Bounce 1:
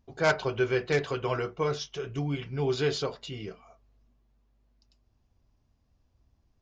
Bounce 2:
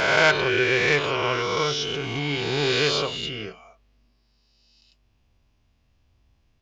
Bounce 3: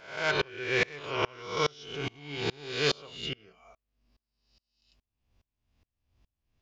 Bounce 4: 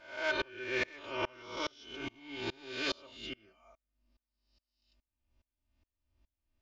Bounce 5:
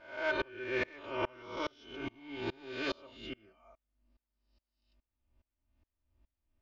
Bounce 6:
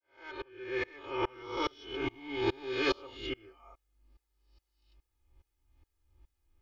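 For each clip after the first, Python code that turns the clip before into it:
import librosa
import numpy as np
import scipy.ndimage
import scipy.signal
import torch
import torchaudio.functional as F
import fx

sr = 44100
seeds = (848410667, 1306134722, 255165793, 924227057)

y1 = fx.spec_swells(x, sr, rise_s=2.15)
y1 = fx.peak_eq(y1, sr, hz=2700.0, db=10.0, octaves=1.4)
y2 = fx.tremolo_decay(y1, sr, direction='swelling', hz=2.4, depth_db=31)
y3 = fx.high_shelf(y2, sr, hz=6500.0, db=-7.5)
y3 = y3 + 0.97 * np.pad(y3, (int(3.3 * sr / 1000.0), 0))[:len(y3)]
y3 = y3 * 10.0 ** (-8.0 / 20.0)
y4 = fx.lowpass(y3, sr, hz=1700.0, slope=6)
y4 = y4 * 10.0 ** (2.0 / 20.0)
y5 = fx.fade_in_head(y4, sr, length_s=1.98)
y5 = y5 + 0.85 * np.pad(y5, (int(2.4 * sr / 1000.0), 0))[:len(y5)]
y5 = y5 * 10.0 ** (4.0 / 20.0)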